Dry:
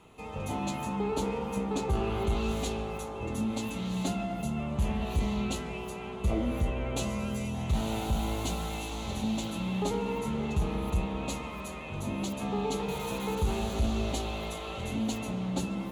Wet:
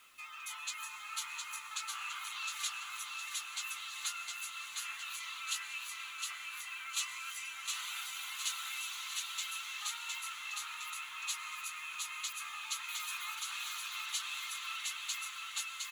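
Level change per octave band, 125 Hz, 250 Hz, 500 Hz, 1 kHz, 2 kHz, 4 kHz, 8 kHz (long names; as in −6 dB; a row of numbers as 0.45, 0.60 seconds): below −40 dB, below −40 dB, below −40 dB, −9.0 dB, +2.5 dB, +2.5 dB, +4.0 dB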